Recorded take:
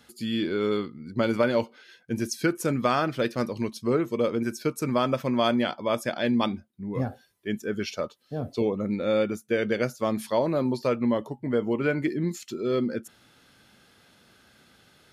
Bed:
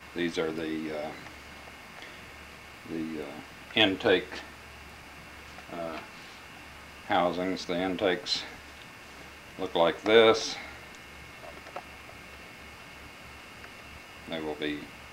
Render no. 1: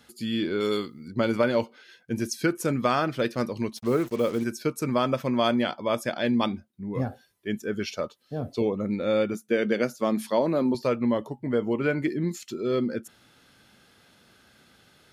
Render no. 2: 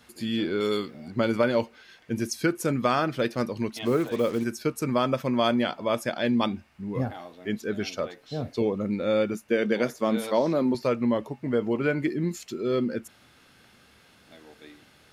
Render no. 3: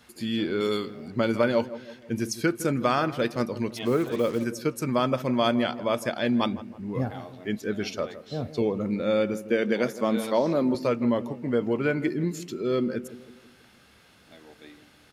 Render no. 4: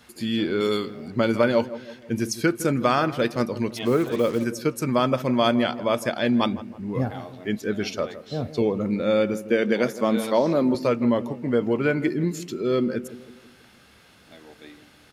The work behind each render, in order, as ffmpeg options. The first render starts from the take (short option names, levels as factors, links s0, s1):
-filter_complex "[0:a]asettb=1/sr,asplit=3[s0][s1][s2];[s0]atrim=end=0.604[s3];[s1]atrim=start=0.6:end=1.08,asetpts=PTS-STARTPTS,afade=t=in:d=0.004:c=qsin,afade=t=out:st=0.476:d=0.004:c=qsin,bass=f=250:g=-3,treble=f=4000:g=14[s4];[s2]atrim=start=1.076[s5];[s3][s4]acrossfade=d=0.004:c1=hsin:c2=qsin[s6];[s6][s5]acrossfade=d=0.004:c1=qsin:c2=hsin,asettb=1/sr,asplit=3[s7][s8][s9];[s7]atrim=end=3.774[s10];[s8]atrim=start=3.77:end=4.44,asetpts=PTS-STARTPTS,afade=t=in:d=0.004:c=qsin,afade=t=out:st=0.666:d=0.004:c=qsin,acrusher=bits=6:mix=0:aa=0.5[s11];[s9]atrim=start=4.436[s12];[s10][s11]acrossfade=d=0.004:c1=hsin:c2=qsin[s13];[s13][s12]acrossfade=d=0.004:c1=qsin:c2=hsin,asettb=1/sr,asplit=3[s14][s15][s16];[s14]atrim=end=9.344[s17];[s15]atrim=start=9.34:end=10.75,asetpts=PTS-STARTPTS,afade=t=in:d=0.004:c=qsin,afade=t=out:st=1.406:d=0.004:c=qsin,lowshelf=f=130:t=q:w=1.5:g=-13[s18];[s16]atrim=start=10.746[s19];[s17][s18]acrossfade=d=0.004:c1=hsin:c2=qsin[s20];[s20][s19]acrossfade=d=0.004:c1=qsin:c2=hsin"
-filter_complex "[1:a]volume=0.15[s0];[0:a][s0]amix=inputs=2:normalize=0"
-filter_complex "[0:a]asplit=2[s0][s1];[s1]adelay=161,lowpass=f=1000:p=1,volume=0.211,asplit=2[s2][s3];[s3]adelay=161,lowpass=f=1000:p=1,volume=0.51,asplit=2[s4][s5];[s5]adelay=161,lowpass=f=1000:p=1,volume=0.51,asplit=2[s6][s7];[s7]adelay=161,lowpass=f=1000:p=1,volume=0.51,asplit=2[s8][s9];[s9]adelay=161,lowpass=f=1000:p=1,volume=0.51[s10];[s0][s2][s4][s6][s8][s10]amix=inputs=6:normalize=0"
-af "volume=1.41"